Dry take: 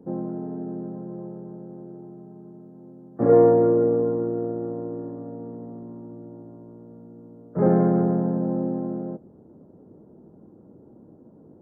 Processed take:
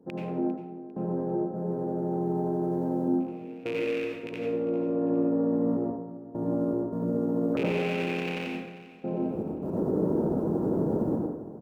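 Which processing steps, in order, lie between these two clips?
loose part that buzzes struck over −26 dBFS, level −15 dBFS
camcorder AGC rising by 53 dB per second
low-shelf EQ 240 Hz −6 dB
brickwall limiter −16.5 dBFS, peak gain reduction 11 dB
gate pattern "xx...xx.xxxxxx" 78 BPM −24 dB
repeating echo 400 ms, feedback 35%, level −17.5 dB
convolution reverb RT60 1.0 s, pre-delay 73 ms, DRR −2 dB
level −6.5 dB

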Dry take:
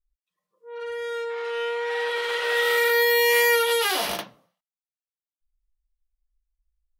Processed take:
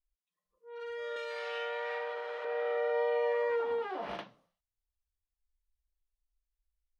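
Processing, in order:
delay with pitch and tempo change per echo 458 ms, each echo +4 semitones, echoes 3, each echo −6 dB
0:01.16–0:02.45: RIAA equalisation recording
treble cut that deepens with the level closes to 950 Hz, closed at −20.5 dBFS
level −8.5 dB

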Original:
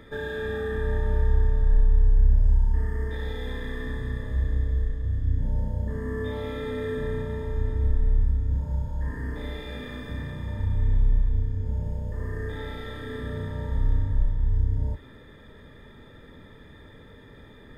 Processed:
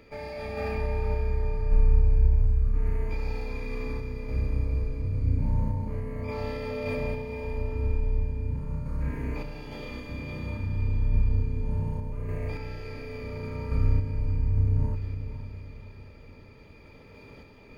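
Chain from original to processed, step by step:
formants moved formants +5 semitones
sample-and-hold tremolo
feedback delay with all-pass diffusion 494 ms, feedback 44%, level −10 dB

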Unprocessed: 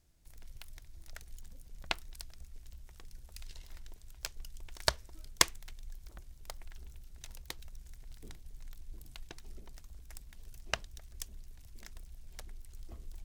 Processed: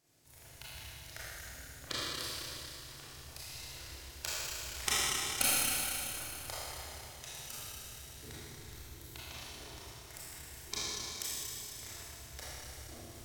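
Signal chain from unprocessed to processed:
parametric band 200 Hz −13.5 dB 0.34 octaves
gate on every frequency bin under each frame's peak −10 dB weak
four-comb reverb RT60 3.2 s, combs from 26 ms, DRR −10 dB

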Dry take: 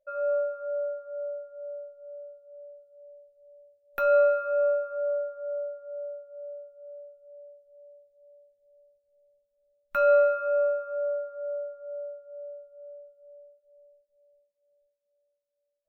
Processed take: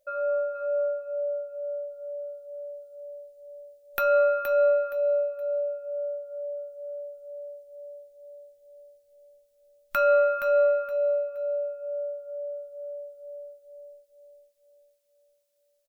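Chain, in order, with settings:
repeating echo 470 ms, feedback 26%, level −6 dB
in parallel at +1 dB: downward compressor, threshold −42 dBFS, peak gain reduction 22.5 dB
on the sum: high-shelf EQ 2,700 Hz +12 dB
level −2 dB

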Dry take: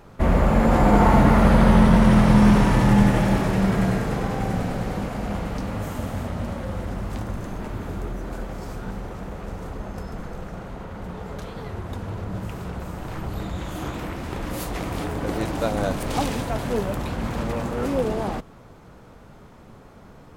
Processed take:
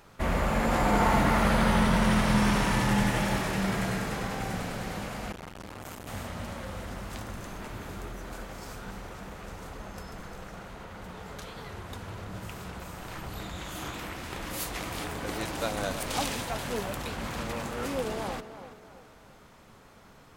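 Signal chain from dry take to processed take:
tilt shelving filter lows −6 dB, about 1,100 Hz
tape delay 332 ms, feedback 44%, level −11 dB, low-pass 2,400 Hz
0:05.32–0:06.08: saturating transformer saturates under 900 Hz
level −4.5 dB

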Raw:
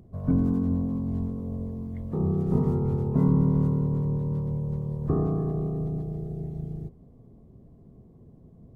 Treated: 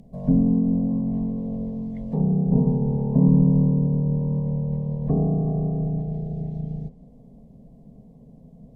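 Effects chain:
phaser with its sweep stopped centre 350 Hz, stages 6
treble cut that deepens with the level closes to 800 Hz, closed at −25 dBFS
level +7 dB

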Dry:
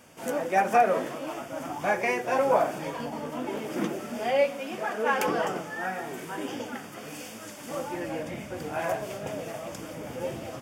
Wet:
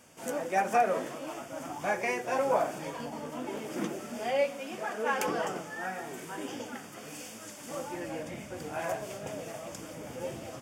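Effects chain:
parametric band 7,400 Hz +5 dB 1.1 octaves
level −4.5 dB

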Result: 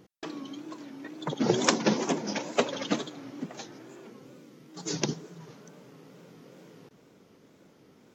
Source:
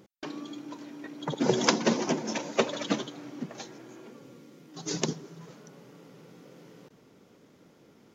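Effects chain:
tape wow and flutter 120 cents

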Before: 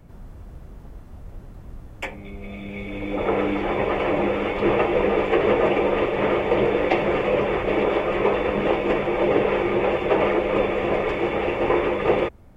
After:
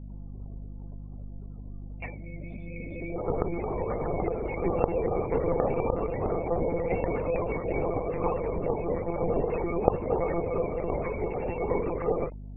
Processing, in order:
spectral peaks only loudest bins 32
one-pitch LPC vocoder at 8 kHz 170 Hz
mains hum 50 Hz, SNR 11 dB
level −7 dB

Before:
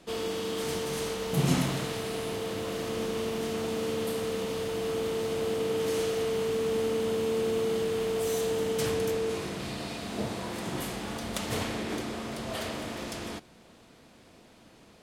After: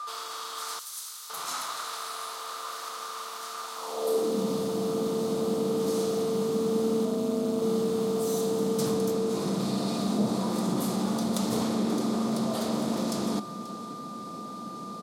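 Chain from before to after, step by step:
steady tone 1,200 Hz −51 dBFS
0:07.05–0:07.62: amplitude modulation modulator 200 Hz, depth 65%
in parallel at −1.5 dB: compressor whose output falls as the input rises −42 dBFS, ratio −1
on the sum: flat-topped bell 2,200 Hz −11 dB 1.2 octaves
single-tap delay 535 ms −16 dB
on a send at −19.5 dB: convolution reverb RT60 0.40 s, pre-delay 4 ms
on the sum: high-pass filter sweep 1,300 Hz → 190 Hz, 0:03.74–0:04.42
0:00.79–0:01.30: first-order pre-emphasis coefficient 0.97

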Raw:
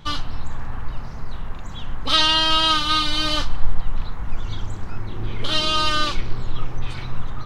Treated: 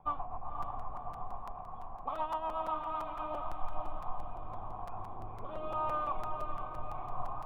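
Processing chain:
speech leveller within 4 dB 2 s
formant resonators in series a
rotating-speaker cabinet horn 8 Hz, later 0.85 Hz, at 0:03.36
on a send: feedback delay with all-pass diffusion 518 ms, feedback 49%, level −6 dB
on the sum: regular buffer underruns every 0.17 s, samples 256, repeat, from 0:00.62
level +6.5 dB

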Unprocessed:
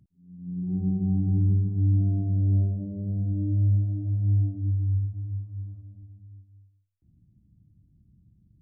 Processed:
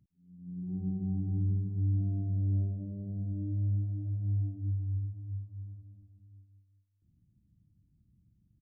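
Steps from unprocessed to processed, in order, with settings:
single-tap delay 397 ms −16.5 dB
level −8 dB

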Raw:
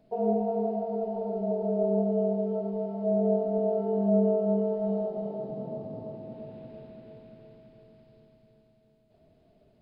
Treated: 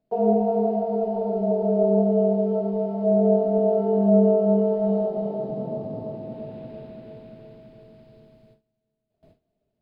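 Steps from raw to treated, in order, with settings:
noise gate with hold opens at −51 dBFS
level +6.5 dB

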